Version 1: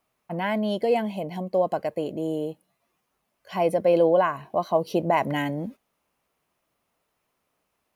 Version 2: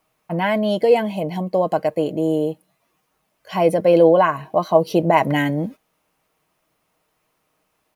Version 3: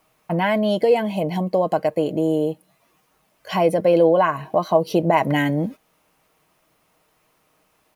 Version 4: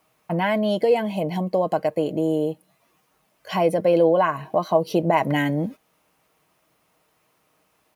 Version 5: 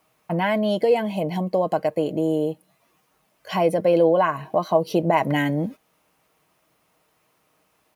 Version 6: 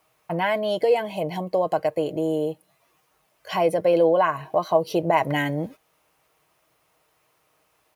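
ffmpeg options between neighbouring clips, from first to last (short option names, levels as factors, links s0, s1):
-af "aecho=1:1:6.4:0.34,volume=2"
-af "acompressor=threshold=0.0251:ratio=1.5,volume=1.88"
-af "highpass=47,volume=0.794"
-af anull
-af "equalizer=f=220:t=o:w=0.64:g=-11"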